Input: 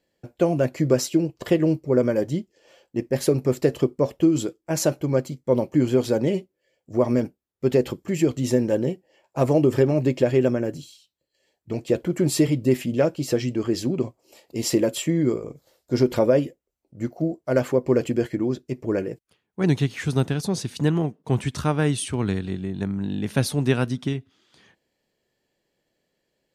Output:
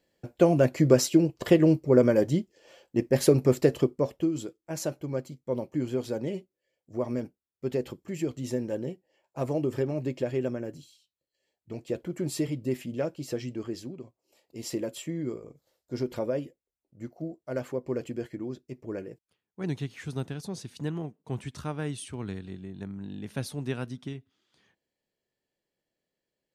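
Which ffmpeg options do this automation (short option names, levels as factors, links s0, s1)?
-af "volume=2.37,afade=t=out:st=3.44:d=0.89:silence=0.316228,afade=t=out:st=13.61:d=0.41:silence=0.354813,afade=t=in:st=14.02:d=0.69:silence=0.421697"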